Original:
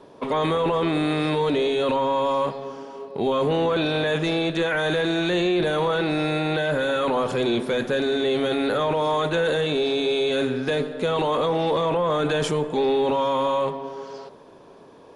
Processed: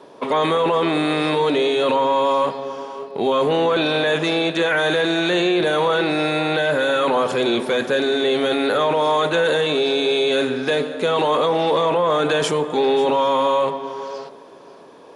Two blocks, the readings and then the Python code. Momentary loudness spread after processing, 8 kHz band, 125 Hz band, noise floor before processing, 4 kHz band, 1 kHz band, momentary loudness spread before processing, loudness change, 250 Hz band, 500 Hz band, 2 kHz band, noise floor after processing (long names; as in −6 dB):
3 LU, +5.5 dB, −1.5 dB, −47 dBFS, +5.5 dB, +5.0 dB, 4 LU, +4.0 dB, +2.0 dB, +4.0 dB, +5.5 dB, −43 dBFS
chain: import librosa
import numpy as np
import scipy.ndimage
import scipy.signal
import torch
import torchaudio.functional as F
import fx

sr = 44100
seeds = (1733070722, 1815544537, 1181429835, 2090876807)

y = fx.highpass(x, sr, hz=320.0, slope=6)
y = y + 10.0 ** (-18.0 / 20.0) * np.pad(y, (int(541 * sr / 1000.0), 0))[:len(y)]
y = F.gain(torch.from_numpy(y), 5.5).numpy()